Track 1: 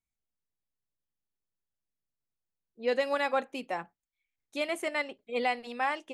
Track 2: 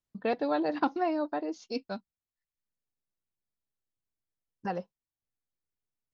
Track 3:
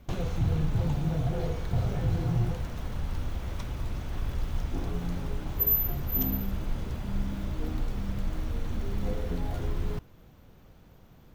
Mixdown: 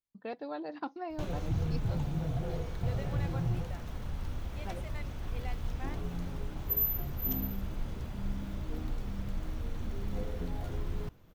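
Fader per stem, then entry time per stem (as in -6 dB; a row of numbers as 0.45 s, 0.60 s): -17.5 dB, -10.5 dB, -5.0 dB; 0.00 s, 0.00 s, 1.10 s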